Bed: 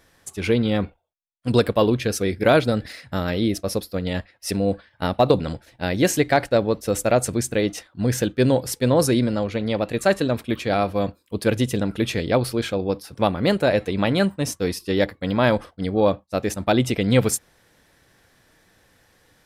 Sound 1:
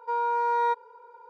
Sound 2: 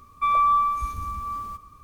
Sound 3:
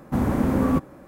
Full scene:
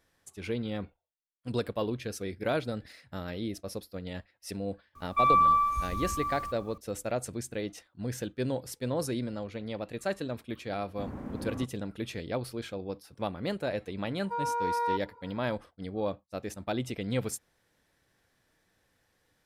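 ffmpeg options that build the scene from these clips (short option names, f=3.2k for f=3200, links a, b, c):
-filter_complex "[0:a]volume=-13.5dB[a];[3:a]lowpass=f=3.3k:p=1[b];[2:a]atrim=end=1.83,asetpts=PTS-STARTPTS,volume=-2.5dB,afade=t=in:d=0.004:c=hsin,afade=t=out:st=1.826:d=0.004:c=hsin,adelay=4950[c];[b]atrim=end=1.07,asetpts=PTS-STARTPTS,volume=-17.5dB,afade=t=in:d=0.004:c=hsin,afade=t=out:st=1.066:d=0.004:c=hsin,adelay=10860[d];[1:a]atrim=end=1.29,asetpts=PTS-STARTPTS,volume=-5dB,afade=t=in:d=0.004:c=hsin,afade=t=out:st=1.286:d=0.004:c=hsin,adelay=14230[e];[a][c][d][e]amix=inputs=4:normalize=0"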